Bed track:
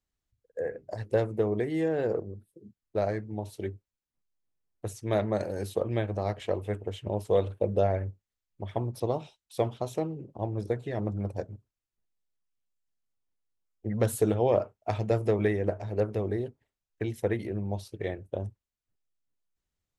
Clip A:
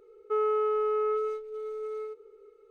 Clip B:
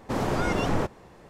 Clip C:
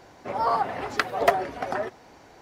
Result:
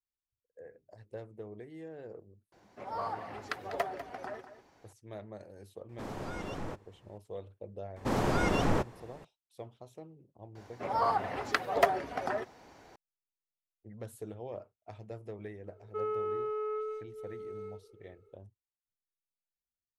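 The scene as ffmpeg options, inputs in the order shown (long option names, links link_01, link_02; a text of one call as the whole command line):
ffmpeg -i bed.wav -i cue0.wav -i cue1.wav -i cue2.wav -filter_complex "[3:a]asplit=2[link_01][link_02];[2:a]asplit=2[link_03][link_04];[0:a]volume=-18dB[link_05];[link_01]aecho=1:1:197:0.251,atrim=end=2.41,asetpts=PTS-STARTPTS,volume=-13dB,afade=type=in:duration=0.004:curve=hsin,afade=type=out:start_time=2.406:duration=0.004:curve=hsin,adelay=2520[link_06];[link_03]atrim=end=1.29,asetpts=PTS-STARTPTS,volume=-14dB,afade=type=in:duration=0.004:curve=hsin,afade=type=out:start_time=1.286:duration=0.004:curve=hsin,adelay=259749S[link_07];[link_04]atrim=end=1.29,asetpts=PTS-STARTPTS,volume=-2.5dB,afade=type=in:duration=0.004:curve=hsin,afade=type=out:start_time=1.286:duration=0.004:curve=hsin,adelay=7960[link_08];[link_02]atrim=end=2.41,asetpts=PTS-STARTPTS,volume=-5dB,afade=type=in:duration=0.004:curve=hsin,afade=type=out:start_time=2.406:duration=0.004:curve=hsin,adelay=10550[link_09];[1:a]atrim=end=2.7,asetpts=PTS-STARTPTS,volume=-7.5dB,afade=type=in:duration=0.004:curve=hsin,afade=type=out:start_time=2.696:duration=0.004:curve=hsin,adelay=15640[link_10];[link_05][link_06][link_07][link_08][link_09][link_10]amix=inputs=6:normalize=0" out.wav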